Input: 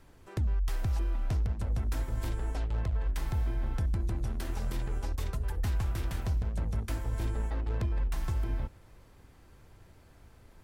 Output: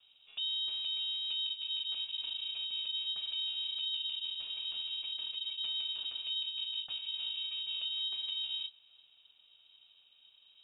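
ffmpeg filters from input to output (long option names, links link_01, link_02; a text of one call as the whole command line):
ffmpeg -i in.wav -filter_complex "[0:a]asuperstop=centerf=1400:order=4:qfactor=0.96,lowpass=frequency=3000:width_type=q:width=0.5098,lowpass=frequency=3000:width_type=q:width=0.6013,lowpass=frequency=3000:width_type=q:width=0.9,lowpass=frequency=3000:width_type=q:width=2.563,afreqshift=-3500,aeval=exprs='val(0)*sin(2*PI*330*n/s)':channel_layout=same,acrossover=split=340|2600[link_01][link_02][link_03];[link_01]acrusher=bits=2:mode=log:mix=0:aa=0.000001[link_04];[link_04][link_02][link_03]amix=inputs=3:normalize=0,volume=-5dB" out.wav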